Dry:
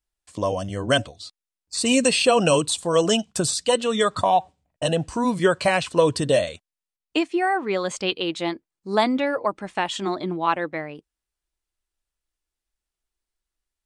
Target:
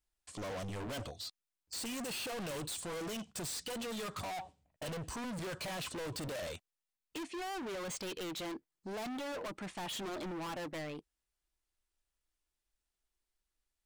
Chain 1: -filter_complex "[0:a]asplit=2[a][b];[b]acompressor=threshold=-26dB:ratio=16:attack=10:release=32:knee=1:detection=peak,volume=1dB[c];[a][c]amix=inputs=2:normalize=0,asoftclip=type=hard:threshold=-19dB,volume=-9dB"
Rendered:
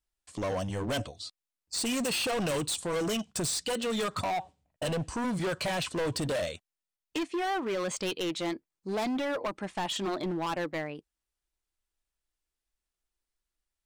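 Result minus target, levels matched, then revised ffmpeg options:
hard clip: distortion -5 dB
-filter_complex "[0:a]asplit=2[a][b];[b]acompressor=threshold=-26dB:ratio=16:attack=10:release=32:knee=1:detection=peak,volume=1dB[c];[a][c]amix=inputs=2:normalize=0,asoftclip=type=hard:threshold=-30.5dB,volume=-9dB"

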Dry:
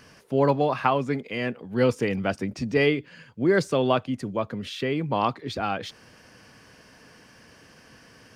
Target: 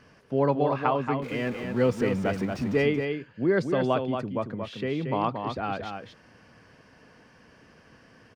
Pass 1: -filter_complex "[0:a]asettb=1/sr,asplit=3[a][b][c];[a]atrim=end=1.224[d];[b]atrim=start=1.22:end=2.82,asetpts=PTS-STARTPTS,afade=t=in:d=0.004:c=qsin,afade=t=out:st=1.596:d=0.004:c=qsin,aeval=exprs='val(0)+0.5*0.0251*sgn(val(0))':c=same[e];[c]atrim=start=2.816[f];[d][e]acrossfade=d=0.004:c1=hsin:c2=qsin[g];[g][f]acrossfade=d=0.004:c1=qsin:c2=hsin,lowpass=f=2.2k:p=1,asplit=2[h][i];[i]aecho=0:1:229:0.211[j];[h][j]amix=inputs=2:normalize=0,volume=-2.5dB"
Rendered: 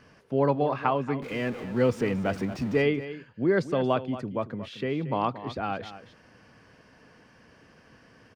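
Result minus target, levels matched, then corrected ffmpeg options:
echo-to-direct -7.5 dB
-filter_complex "[0:a]asettb=1/sr,asplit=3[a][b][c];[a]atrim=end=1.224[d];[b]atrim=start=1.22:end=2.82,asetpts=PTS-STARTPTS,afade=t=in:d=0.004:c=qsin,afade=t=out:st=1.596:d=0.004:c=qsin,aeval=exprs='val(0)+0.5*0.0251*sgn(val(0))':c=same[e];[c]atrim=start=2.816[f];[d][e]acrossfade=d=0.004:c1=hsin:c2=qsin[g];[g][f]acrossfade=d=0.004:c1=qsin:c2=hsin,lowpass=f=2.2k:p=1,asplit=2[h][i];[i]aecho=0:1:229:0.501[j];[h][j]amix=inputs=2:normalize=0,volume=-2.5dB"

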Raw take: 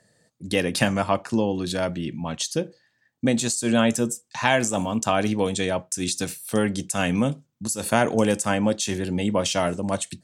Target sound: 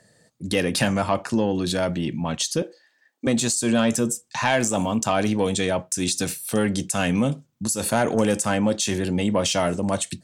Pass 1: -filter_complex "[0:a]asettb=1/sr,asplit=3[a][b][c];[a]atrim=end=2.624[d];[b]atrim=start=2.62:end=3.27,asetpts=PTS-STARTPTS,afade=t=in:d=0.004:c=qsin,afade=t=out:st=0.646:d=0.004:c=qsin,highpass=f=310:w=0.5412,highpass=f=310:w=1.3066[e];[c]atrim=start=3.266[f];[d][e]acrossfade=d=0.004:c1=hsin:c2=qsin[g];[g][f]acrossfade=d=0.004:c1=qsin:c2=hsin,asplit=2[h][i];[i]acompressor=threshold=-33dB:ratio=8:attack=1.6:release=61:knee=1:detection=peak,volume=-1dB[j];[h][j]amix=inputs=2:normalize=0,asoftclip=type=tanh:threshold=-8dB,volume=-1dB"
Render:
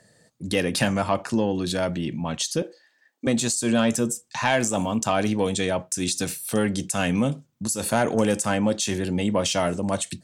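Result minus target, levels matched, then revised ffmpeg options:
compressor: peak gain reduction +6.5 dB
-filter_complex "[0:a]asettb=1/sr,asplit=3[a][b][c];[a]atrim=end=2.624[d];[b]atrim=start=2.62:end=3.27,asetpts=PTS-STARTPTS,afade=t=in:d=0.004:c=qsin,afade=t=out:st=0.646:d=0.004:c=qsin,highpass=f=310:w=0.5412,highpass=f=310:w=1.3066[e];[c]atrim=start=3.266[f];[d][e]acrossfade=d=0.004:c1=hsin:c2=qsin[g];[g][f]acrossfade=d=0.004:c1=qsin:c2=hsin,asplit=2[h][i];[i]acompressor=threshold=-25.5dB:ratio=8:attack=1.6:release=61:knee=1:detection=peak,volume=-1dB[j];[h][j]amix=inputs=2:normalize=0,asoftclip=type=tanh:threshold=-8dB,volume=-1dB"

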